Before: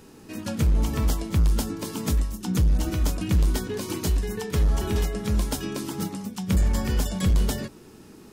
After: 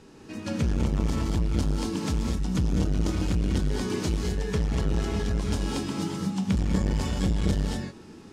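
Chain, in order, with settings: low-pass 6.7 kHz 12 dB/octave; gated-style reverb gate 260 ms rising, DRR -0.5 dB; transformer saturation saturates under 230 Hz; trim -2 dB

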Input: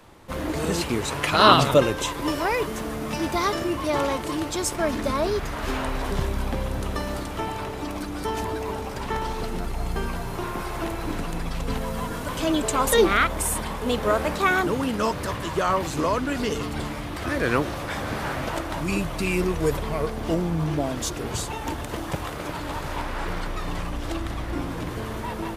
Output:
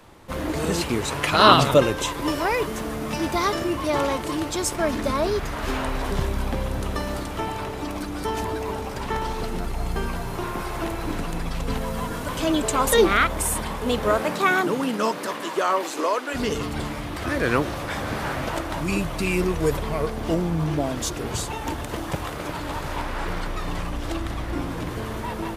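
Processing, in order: 14.18–16.33 s: high-pass 110 Hz -> 390 Hz 24 dB/octave; trim +1 dB

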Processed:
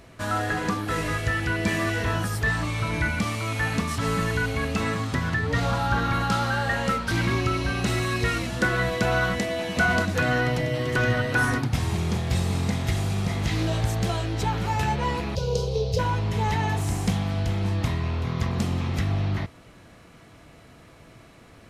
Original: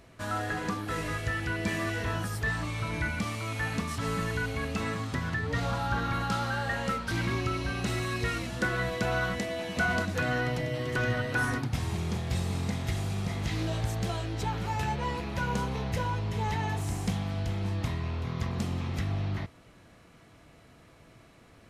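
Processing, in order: 15.35–15.99 s: FFT filter 150 Hz 0 dB, 300 Hz -30 dB, 440 Hz +11 dB, 720 Hz -9 dB, 1.9 kHz -23 dB, 2.7 kHz -7 dB, 4.9 kHz +7 dB, 8.5 kHz -6 dB; trim +6 dB

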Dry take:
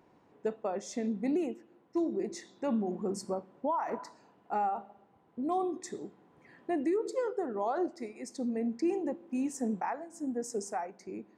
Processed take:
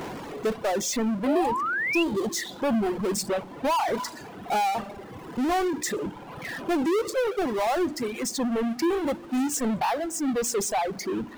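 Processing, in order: hum notches 60/120/180/240/300 Hz; power-law waveshaper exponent 0.35; painted sound rise, 1.26–2.03 s, 530–2900 Hz -29 dBFS; reverb removal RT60 1.8 s; trim +2 dB

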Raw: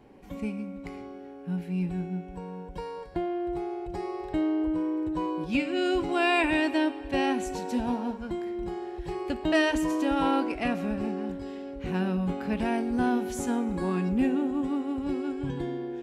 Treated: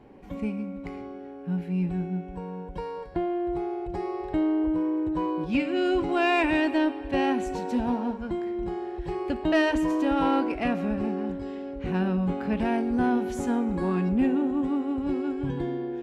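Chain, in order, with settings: treble shelf 4.3 kHz -10.5 dB; in parallel at -3.5 dB: saturation -22.5 dBFS, distortion -16 dB; on the sum: trim -1.5 dB

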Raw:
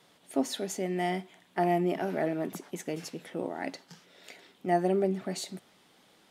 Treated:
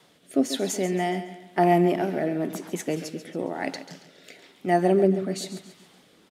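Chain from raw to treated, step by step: rotary cabinet horn 1 Hz; feedback delay 138 ms, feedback 41%, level -12 dB; trim +7.5 dB

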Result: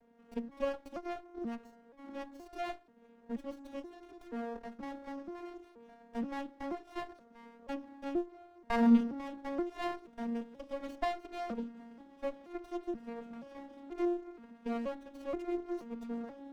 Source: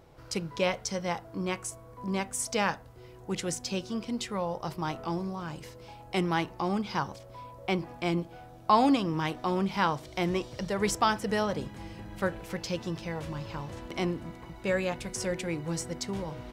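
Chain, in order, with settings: vocoder on a broken chord minor triad, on A#3, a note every 479 ms; sliding maximum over 17 samples; trim -5 dB

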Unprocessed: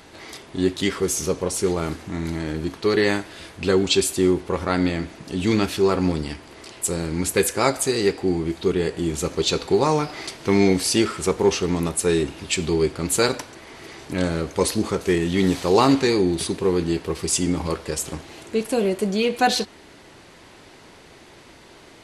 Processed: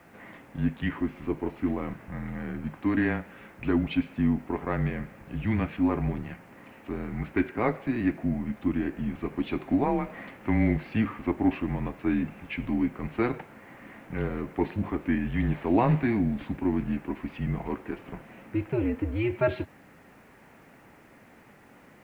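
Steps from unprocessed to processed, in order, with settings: dynamic bell 1.4 kHz, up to -4 dB, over -40 dBFS, Q 3.6; mistuned SSB -120 Hz 190–2600 Hz; word length cut 10-bit, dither none; trim -5.5 dB

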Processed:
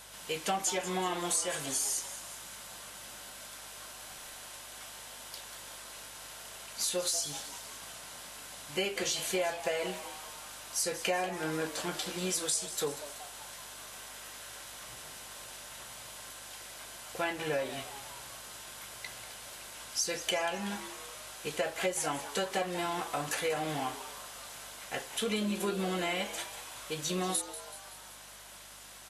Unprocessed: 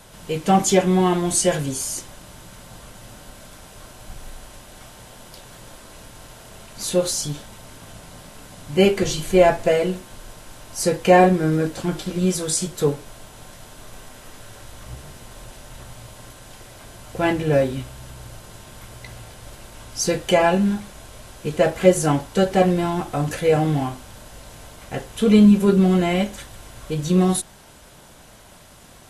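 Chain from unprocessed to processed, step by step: high-pass 1.4 kHz 6 dB/octave; compression 6:1, threshold -29 dBFS, peak gain reduction 13.5 dB; hum 50 Hz, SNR 28 dB; on a send: frequency-shifting echo 189 ms, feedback 59%, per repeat +140 Hz, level -13 dB

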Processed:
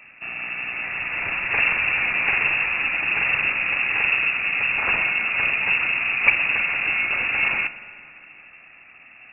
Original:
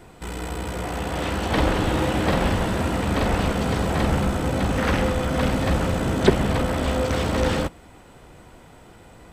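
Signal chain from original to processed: frequency inversion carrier 2.7 kHz; spring tank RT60 2.5 s, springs 43/56 ms, chirp 80 ms, DRR 13 dB; trim -1 dB

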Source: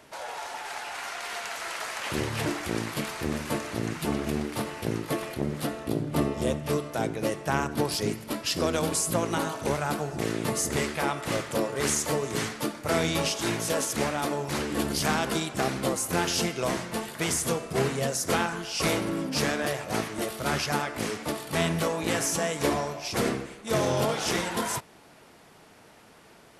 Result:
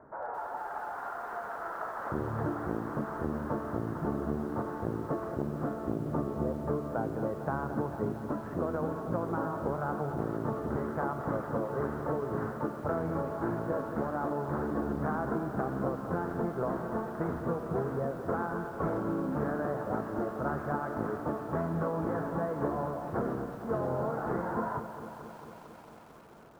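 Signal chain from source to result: steep low-pass 1.5 kHz 48 dB/octave; compression 10:1, threshold -28 dBFS, peak gain reduction 9 dB; bit-crushed delay 224 ms, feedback 80%, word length 9-bit, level -11.5 dB

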